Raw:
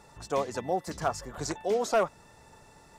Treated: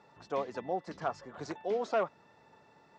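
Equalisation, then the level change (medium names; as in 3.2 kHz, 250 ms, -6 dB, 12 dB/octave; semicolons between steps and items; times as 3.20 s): band-pass 160–4700 Hz; distance through air 85 m; -4.5 dB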